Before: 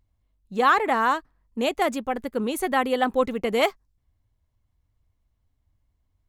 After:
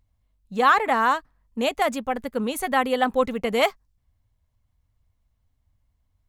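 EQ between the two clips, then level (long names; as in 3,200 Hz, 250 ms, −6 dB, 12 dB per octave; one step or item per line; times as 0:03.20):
parametric band 350 Hz −14 dB 0.26 octaves
+1.5 dB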